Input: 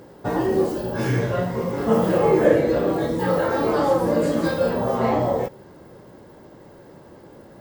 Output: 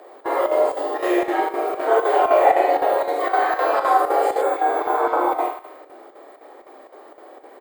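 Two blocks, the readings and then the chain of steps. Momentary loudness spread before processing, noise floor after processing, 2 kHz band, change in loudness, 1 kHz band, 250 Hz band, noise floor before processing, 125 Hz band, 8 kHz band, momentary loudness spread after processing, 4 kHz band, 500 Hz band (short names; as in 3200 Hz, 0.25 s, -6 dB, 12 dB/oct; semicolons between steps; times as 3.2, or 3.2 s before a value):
7 LU, -47 dBFS, +4.0 dB, +1.5 dB, +9.0 dB, -7.0 dB, -46 dBFS, under -35 dB, n/a, 8 LU, -0.5 dB, +0.5 dB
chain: doubler 47 ms -2.5 dB; thinning echo 75 ms, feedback 66%, high-pass 420 Hz, level -9 dB; frequency shift +230 Hz; bell 5700 Hz -13.5 dB 0.36 oct; chopper 3.9 Hz, depth 60%, duty 80%; spectral repair 4.44–5.29, 1800–7100 Hz after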